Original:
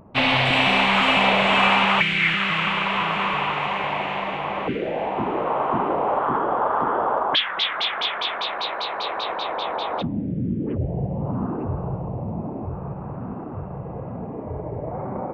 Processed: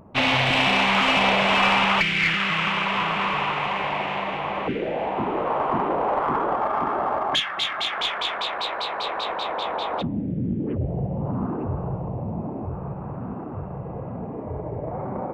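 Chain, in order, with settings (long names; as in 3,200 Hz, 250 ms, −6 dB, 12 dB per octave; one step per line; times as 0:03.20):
one-sided soft clipper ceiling −13 dBFS
0:06.56–0:07.92: notch comb filter 490 Hz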